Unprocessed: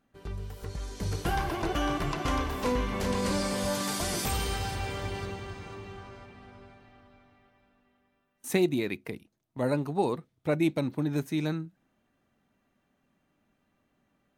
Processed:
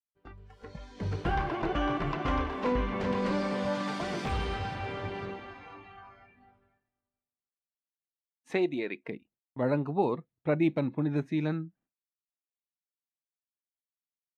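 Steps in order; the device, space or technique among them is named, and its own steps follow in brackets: spectral noise reduction 14 dB; hearing-loss simulation (low-pass 2.7 kHz 12 dB/octave; expander -58 dBFS); 8.52–9.08 s: tone controls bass -12 dB, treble 0 dB

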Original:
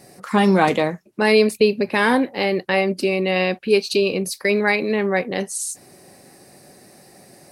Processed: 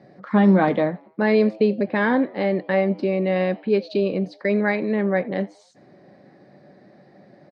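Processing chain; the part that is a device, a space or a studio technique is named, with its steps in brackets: frequency-shifting delay pedal into a guitar cabinet (frequency-shifting echo 85 ms, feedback 47%, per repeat +110 Hz, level -24 dB; cabinet simulation 85–3500 Hz, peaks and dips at 140 Hz +6 dB, 200 Hz +7 dB, 300 Hz +6 dB, 590 Hz +7 dB, 1.7 kHz +3 dB, 2.7 kHz -10 dB); trim -5.5 dB

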